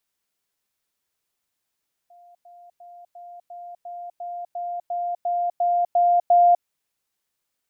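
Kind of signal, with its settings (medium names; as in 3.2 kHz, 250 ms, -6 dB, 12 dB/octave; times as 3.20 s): level ladder 701 Hz -47.5 dBFS, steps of 3 dB, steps 13, 0.25 s 0.10 s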